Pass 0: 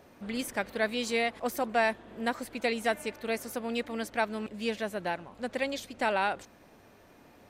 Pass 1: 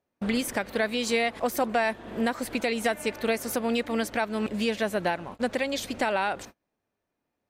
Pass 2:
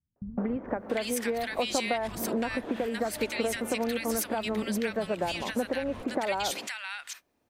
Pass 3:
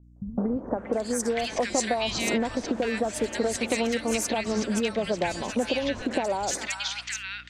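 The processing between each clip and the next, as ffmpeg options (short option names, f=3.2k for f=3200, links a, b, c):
-filter_complex "[0:a]agate=range=-37dB:threshold=-48dB:ratio=16:detection=peak,asplit=2[a][b];[b]acompressor=threshold=-36dB:ratio=6,volume=2.5dB[c];[a][c]amix=inputs=2:normalize=0,alimiter=limit=-19.5dB:level=0:latency=1:release=257,volume=4dB"
-filter_complex "[0:a]acompressor=threshold=-33dB:ratio=10,acrossover=split=160|1400[a][b][c];[b]adelay=160[d];[c]adelay=680[e];[a][d][e]amix=inputs=3:normalize=0,volume=8dB"
-filter_complex "[0:a]aeval=exprs='val(0)+0.00178*(sin(2*PI*60*n/s)+sin(2*PI*2*60*n/s)/2+sin(2*PI*3*60*n/s)/3+sin(2*PI*4*60*n/s)/4+sin(2*PI*5*60*n/s)/5)':c=same,lowpass=f=7k:t=q:w=2.2,acrossover=split=1300|5100[a][b][c];[c]adelay=30[d];[b]adelay=400[e];[a][e][d]amix=inputs=3:normalize=0,volume=3.5dB"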